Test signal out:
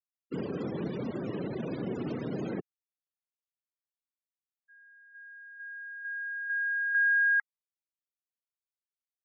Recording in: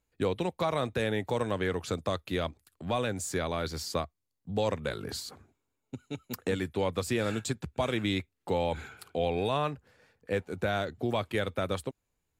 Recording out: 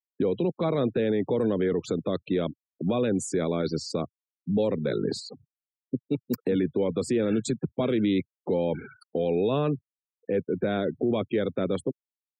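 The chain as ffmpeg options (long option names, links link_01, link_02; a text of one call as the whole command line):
ffmpeg -i in.wav -af "afftfilt=real='re*gte(hypot(re,im),0.0126)':imag='im*gte(hypot(re,im),0.0126)':win_size=1024:overlap=0.75,highpass=frequency=140:width=0.5412,highpass=frequency=140:width=1.3066,lowshelf=frequency=580:width_type=q:width=1.5:gain=9.5,alimiter=limit=-19dB:level=0:latency=1:release=21,volume=2dB" out.wav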